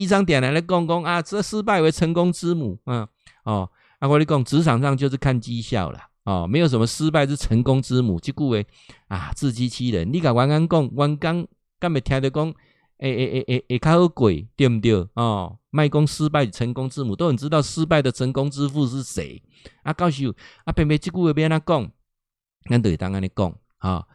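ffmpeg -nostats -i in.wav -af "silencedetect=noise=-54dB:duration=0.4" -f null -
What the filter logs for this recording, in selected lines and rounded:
silence_start: 21.92
silence_end: 22.62 | silence_duration: 0.70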